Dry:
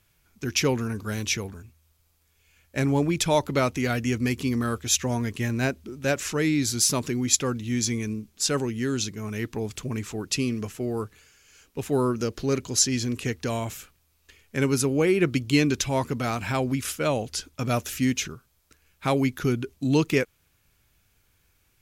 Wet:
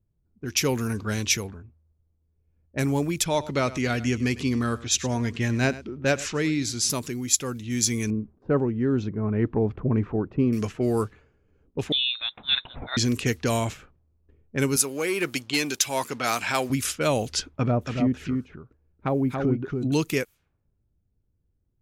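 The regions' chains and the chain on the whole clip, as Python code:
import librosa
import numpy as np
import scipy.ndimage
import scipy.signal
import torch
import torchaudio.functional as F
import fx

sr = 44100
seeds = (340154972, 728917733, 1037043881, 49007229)

y = fx.chain(x, sr, fx.lowpass(hz=5700.0, slope=12),
    fx.echo_single(ms=102, db=-17.5), at=(3.24, 6.9))
y = fx.chain(y, sr, fx.lowpass(hz=1000.0, slope=12),
    fx.gate_hold(open_db=-47.0, close_db=-52.0, hold_ms=71.0, range_db=-21, attack_ms=1.4, release_ms=100.0), at=(8.1, 10.53))
y = fx.chain(y, sr, fx.highpass(hz=580.0, slope=6),
    fx.freq_invert(carrier_hz=3900), at=(11.92, 12.97))
y = fx.chain(y, sr, fx.leveller(passes=1),
    fx.highpass(hz=760.0, slope=6), at=(14.76, 16.7))
y = fx.chain(y, sr, fx.env_lowpass_down(base_hz=710.0, full_db=-21.5),
    fx.echo_single(ms=281, db=-4.0), at=(17.53, 19.92))
y = fx.env_lowpass(y, sr, base_hz=320.0, full_db=-23.5)
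y = fx.high_shelf(y, sr, hz=7500.0, db=11.5)
y = fx.rider(y, sr, range_db=10, speed_s=0.5)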